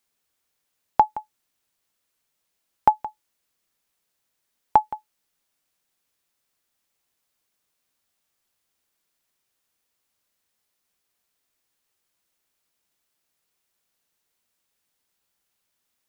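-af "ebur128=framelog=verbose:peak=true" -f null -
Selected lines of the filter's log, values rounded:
Integrated loudness:
  I:         -23.7 LUFS
  Threshold: -35.2 LUFS
Loudness range:
  LRA:         3.0 LU
  Threshold: -50.3 LUFS
  LRA low:   -31.7 LUFS
  LRA high:  -28.7 LUFS
True peak:
  Peak:       -3.3 dBFS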